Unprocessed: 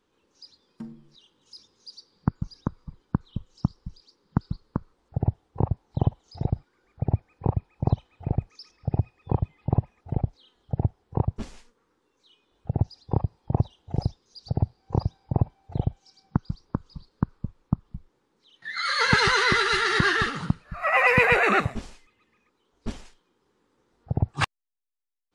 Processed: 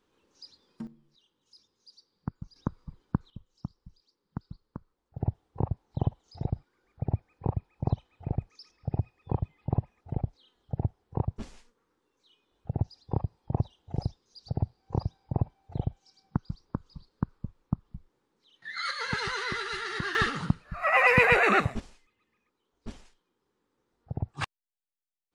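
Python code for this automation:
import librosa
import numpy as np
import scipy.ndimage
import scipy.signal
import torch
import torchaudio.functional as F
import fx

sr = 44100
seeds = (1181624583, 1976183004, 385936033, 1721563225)

y = fx.gain(x, sr, db=fx.steps((0.0, -1.0), (0.87, -11.0), (2.56, -3.0), (3.3, -13.0), (5.18, -5.0), (18.91, -11.5), (20.15, -1.5), (21.8, -8.5)))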